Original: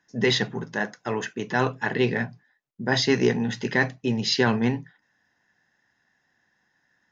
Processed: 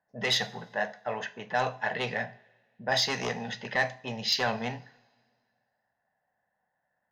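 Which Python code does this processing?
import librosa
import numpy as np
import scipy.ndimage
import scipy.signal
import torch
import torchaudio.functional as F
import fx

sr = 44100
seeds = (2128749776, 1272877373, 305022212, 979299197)

y = fx.env_lowpass(x, sr, base_hz=960.0, full_db=-17.5)
y = fx.peak_eq(y, sr, hz=1100.0, db=-7.5, octaves=1.4)
y = 10.0 ** (-15.5 / 20.0) * np.tanh(y / 10.0 ** (-15.5 / 20.0))
y = fx.low_shelf_res(y, sr, hz=470.0, db=-10.0, q=3.0)
y = fx.rev_double_slope(y, sr, seeds[0], early_s=0.41, late_s=1.9, knee_db=-20, drr_db=11.5)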